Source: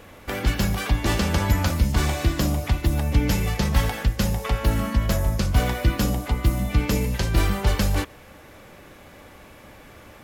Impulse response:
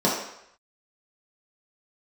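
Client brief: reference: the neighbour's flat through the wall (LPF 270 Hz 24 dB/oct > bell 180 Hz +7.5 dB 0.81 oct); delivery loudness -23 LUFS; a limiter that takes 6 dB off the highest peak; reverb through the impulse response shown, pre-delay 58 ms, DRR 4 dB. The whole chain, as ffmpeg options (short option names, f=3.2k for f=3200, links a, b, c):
-filter_complex "[0:a]alimiter=limit=-13.5dB:level=0:latency=1,asplit=2[a][b];[1:a]atrim=start_sample=2205,adelay=58[c];[b][c]afir=irnorm=-1:irlink=0,volume=-20.5dB[d];[a][d]amix=inputs=2:normalize=0,lowpass=f=270:w=0.5412,lowpass=f=270:w=1.3066,equalizer=f=180:t=o:w=0.81:g=7.5,volume=-2dB"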